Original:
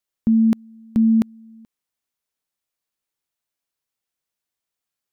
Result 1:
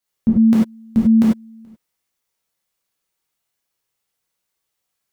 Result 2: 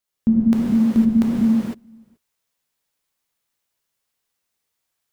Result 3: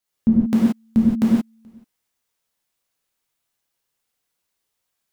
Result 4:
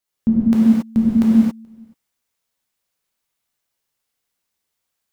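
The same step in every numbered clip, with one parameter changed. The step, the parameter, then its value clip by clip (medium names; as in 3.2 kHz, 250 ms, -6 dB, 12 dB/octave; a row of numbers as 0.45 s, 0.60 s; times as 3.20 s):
gated-style reverb, gate: 120 ms, 530 ms, 200 ms, 300 ms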